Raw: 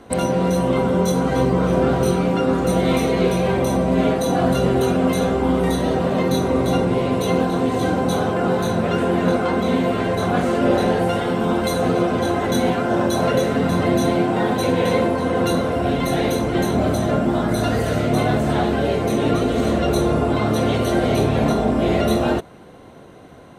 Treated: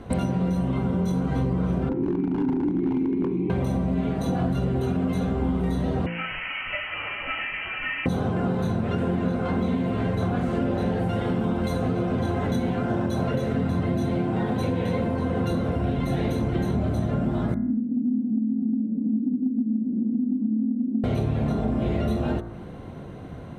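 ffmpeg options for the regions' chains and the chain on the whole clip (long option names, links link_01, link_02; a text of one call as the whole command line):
ffmpeg -i in.wav -filter_complex "[0:a]asettb=1/sr,asplit=3[link_01][link_02][link_03];[link_01]atrim=end=1.894[link_04];[link_02]atrim=start=1.89:end=3.5,asetpts=PTS-STARTPTS,afade=type=in:duration=0.004:curve=qsin,afade=type=out:start_time=1.606:duration=0.004:curve=qsin,asplit=3[link_05][link_06][link_07];[link_05]bandpass=frequency=300:width_type=q:width=8,volume=0dB[link_08];[link_06]bandpass=frequency=870:width_type=q:width=8,volume=-6dB[link_09];[link_07]bandpass=frequency=2240:width_type=q:width=8,volume=-9dB[link_10];[link_08][link_09][link_10]amix=inputs=3:normalize=0,lowshelf=frequency=510:width_type=q:width=3:gain=9,aeval=exprs='0.251*(abs(mod(val(0)/0.251+3,4)-2)-1)':channel_layout=same[link_11];[link_03]atrim=start=3.496[link_12];[link_04][link_11]acrossfade=duration=0.004:curve1=hsin:curve2=qsin[link_13];[link_13][link_12]acrossfade=duration=0.004:curve1=qsin:curve2=hsin,asettb=1/sr,asplit=3[link_14][link_15][link_16];[link_14]atrim=end=6.064[link_17];[link_15]atrim=start=6.06:end=8.06,asetpts=PTS-STARTPTS,afade=type=in:duration=0.004:curve=qsin,afade=type=out:start_time=1.996:duration=0.004:curve=qsin,highpass=frequency=1400:width_type=q:width=1.5,lowpass=frequency=2900:width_type=q:width=0.5098,lowpass=frequency=2900:width_type=q:width=0.6013,lowpass=frequency=2900:width_type=q:width=0.9,lowpass=frequency=2900:width_type=q:width=2.563,afreqshift=-3400[link_18];[link_16]atrim=start=8.056[link_19];[link_17][link_18]acrossfade=duration=0.004:curve1=hsin:curve2=qsin[link_20];[link_20][link_19]acrossfade=duration=0.004:curve1=qsin:curve2=hsin,asettb=1/sr,asplit=3[link_21][link_22][link_23];[link_21]atrim=end=17.544[link_24];[link_22]atrim=start=17.54:end=21.04,asetpts=PTS-STARTPTS,afade=type=in:duration=0.004:curve=qsin,afade=type=out:start_time=3.496:duration=0.004:curve=qsin,asuperpass=centerf=240:order=4:qfactor=3.7,aecho=1:1:3.9:0.76,atrim=end_sample=154350[link_25];[link_23]atrim=start=21.036[link_26];[link_24][link_25]acrossfade=duration=0.004:curve1=hsin:curve2=qsin[link_27];[link_27][link_26]acrossfade=duration=0.004:curve1=qsin:curve2=hsin,bass=frequency=250:gain=11,treble=frequency=4000:gain=-7,bandreject=frequency=57.32:width_type=h:width=4,bandreject=frequency=114.64:width_type=h:width=4,bandreject=frequency=171.96:width_type=h:width=4,bandreject=frequency=229.28:width_type=h:width=4,bandreject=frequency=286.6:width_type=h:width=4,bandreject=frequency=343.92:width_type=h:width=4,bandreject=frequency=401.24:width_type=h:width=4,bandreject=frequency=458.56:width_type=h:width=4,bandreject=frequency=515.88:width_type=h:width=4,bandreject=frequency=573.2:width_type=h:width=4,bandreject=frequency=630.52:width_type=h:width=4,bandreject=frequency=687.84:width_type=h:width=4,bandreject=frequency=745.16:width_type=h:width=4,bandreject=frequency=802.48:width_type=h:width=4,bandreject=frequency=859.8:width_type=h:width=4,bandreject=frequency=917.12:width_type=h:width=4,bandreject=frequency=974.44:width_type=h:width=4,bandreject=frequency=1031.76:width_type=h:width=4,bandreject=frequency=1089.08:width_type=h:width=4,bandreject=frequency=1146.4:width_type=h:width=4,bandreject=frequency=1203.72:width_type=h:width=4,bandreject=frequency=1261.04:width_type=h:width=4,bandreject=frequency=1318.36:width_type=h:width=4,bandreject=frequency=1375.68:width_type=h:width=4,bandreject=frequency=1433:width_type=h:width=4,bandreject=frequency=1490.32:width_type=h:width=4,bandreject=frequency=1547.64:width_type=h:width=4,bandreject=frequency=1604.96:width_type=h:width=4,bandreject=frequency=1662.28:width_type=h:width=4,bandreject=frequency=1719.6:width_type=h:width=4,bandreject=frequency=1776.92:width_type=h:width=4,bandreject=frequency=1834.24:width_type=h:width=4,bandreject=frequency=1891.56:width_type=h:width=4,bandreject=frequency=1948.88:width_type=h:width=4,bandreject=frequency=2006.2:width_type=h:width=4,bandreject=frequency=2063.52:width_type=h:width=4,acompressor=threshold=-22dB:ratio=6" out.wav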